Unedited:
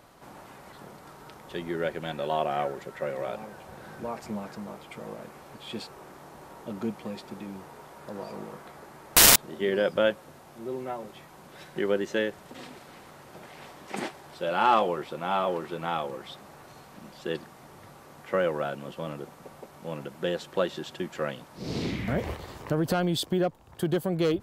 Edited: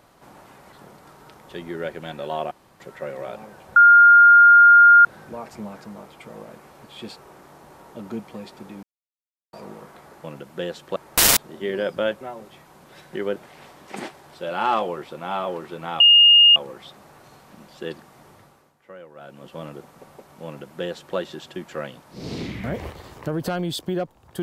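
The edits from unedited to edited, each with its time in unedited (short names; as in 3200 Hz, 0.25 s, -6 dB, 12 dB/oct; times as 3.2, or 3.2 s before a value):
2.51–2.8 room tone
3.76 add tone 1410 Hz -7 dBFS 1.29 s
7.54–8.24 mute
10.2–10.84 cut
11.99–13.36 cut
16 add tone 2840 Hz -8.5 dBFS 0.56 s
17.73–19.04 dip -16.5 dB, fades 0.46 s
19.89–20.61 copy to 8.95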